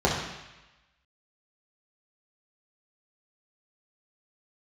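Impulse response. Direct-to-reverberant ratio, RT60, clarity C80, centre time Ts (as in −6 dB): −5.0 dB, 1.0 s, 5.5 dB, 50 ms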